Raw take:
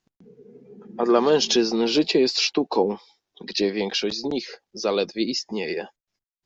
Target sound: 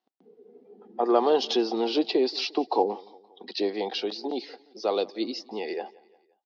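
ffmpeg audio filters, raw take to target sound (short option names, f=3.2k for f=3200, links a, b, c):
-af "highpass=f=260:w=0.5412,highpass=f=260:w=1.3066,equalizer=f=760:t=q:w=4:g=9,equalizer=f=1.6k:t=q:w=4:g=-6,equalizer=f=2.4k:t=q:w=4:g=-6,lowpass=f=4.5k:w=0.5412,lowpass=f=4.5k:w=1.3066,aecho=1:1:174|348|522:0.0708|0.0354|0.0177,volume=-4dB"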